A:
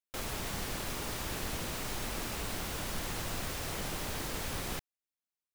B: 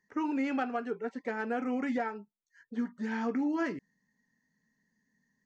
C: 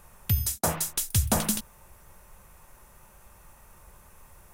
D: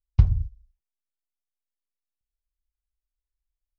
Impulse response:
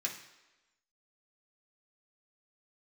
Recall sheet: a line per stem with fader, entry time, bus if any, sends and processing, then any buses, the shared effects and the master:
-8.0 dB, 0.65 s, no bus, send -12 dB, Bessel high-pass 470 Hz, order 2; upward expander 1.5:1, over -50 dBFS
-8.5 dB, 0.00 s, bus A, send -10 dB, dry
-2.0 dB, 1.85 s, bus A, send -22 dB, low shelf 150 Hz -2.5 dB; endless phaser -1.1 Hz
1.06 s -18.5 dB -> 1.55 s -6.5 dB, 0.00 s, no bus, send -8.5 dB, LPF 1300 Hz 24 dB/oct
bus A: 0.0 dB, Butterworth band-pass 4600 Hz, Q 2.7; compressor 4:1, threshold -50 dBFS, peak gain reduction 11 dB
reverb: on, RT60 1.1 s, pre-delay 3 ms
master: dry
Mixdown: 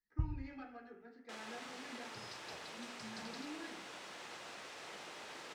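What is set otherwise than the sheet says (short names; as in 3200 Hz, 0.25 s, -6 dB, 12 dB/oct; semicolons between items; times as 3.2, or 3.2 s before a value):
stem A: entry 0.65 s -> 1.15 s; master: extra air absorption 99 m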